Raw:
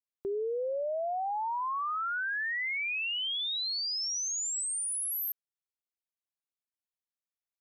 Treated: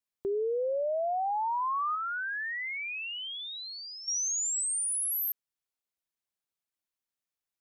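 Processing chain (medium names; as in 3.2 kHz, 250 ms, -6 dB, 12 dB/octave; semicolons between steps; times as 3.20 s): 1.95–4.08 s: tape spacing loss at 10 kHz 25 dB; trim +2.5 dB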